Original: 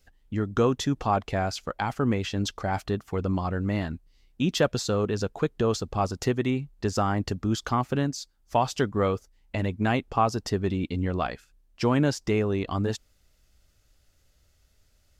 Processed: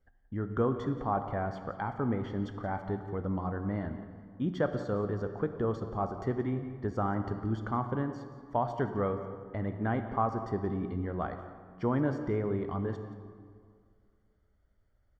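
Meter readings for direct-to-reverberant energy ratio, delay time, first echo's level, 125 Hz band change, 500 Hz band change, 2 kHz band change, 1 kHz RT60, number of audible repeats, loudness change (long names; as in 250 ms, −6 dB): 7.0 dB, 176 ms, −15.0 dB, −6.0 dB, −5.5 dB, −9.0 dB, 2.1 s, 1, −6.0 dB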